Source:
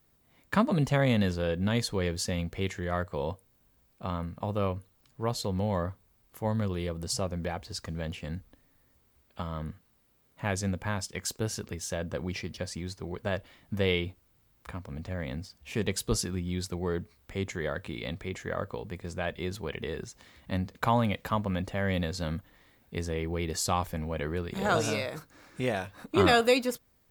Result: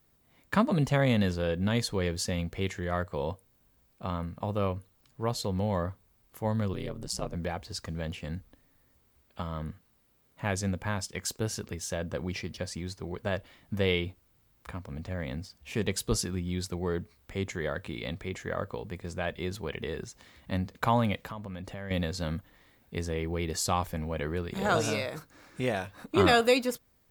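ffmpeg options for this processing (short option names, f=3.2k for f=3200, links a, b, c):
-filter_complex "[0:a]asettb=1/sr,asplit=3[a][b][c];[a]atrim=end=6.734[d];[b]atrim=start=6.73:end=7.35,asetpts=PTS-STARTPTS,afade=t=in:d=0.004:c=qsin,afade=t=out:st=0.616:d=0.004:c=qsin,aeval=exprs='val(0)*sin(2*PI*59*n/s)':c=same[e];[c]atrim=start=7.346[f];[d][e]acrossfade=d=0.004:c1=hsin:c2=qsin[g];[g][f]acrossfade=d=0.004:c1=qsin:c2=hsin,asettb=1/sr,asplit=3[h][i][j];[h]atrim=end=21.224[k];[i]atrim=start=21.22:end=21.91,asetpts=PTS-STARTPTS,afade=t=in:d=0.004:c=qsin,afade=t=out:st=0.686:d=0.004:c=qsin,acompressor=threshold=-36dB:ratio=6:attack=3.2:release=140:knee=1:detection=peak[l];[j]atrim=start=21.906[m];[k][l]acrossfade=d=0.004:c1=hsin:c2=qsin[n];[n][m]acrossfade=d=0.004:c1=qsin:c2=hsin"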